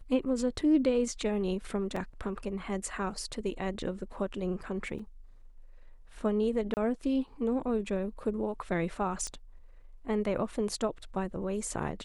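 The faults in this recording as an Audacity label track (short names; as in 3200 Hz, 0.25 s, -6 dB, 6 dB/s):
1.960000	1.960000	gap 4 ms
4.990000	4.990000	gap 4.6 ms
6.740000	6.770000	gap 29 ms
9.270000	9.270000	pop -24 dBFS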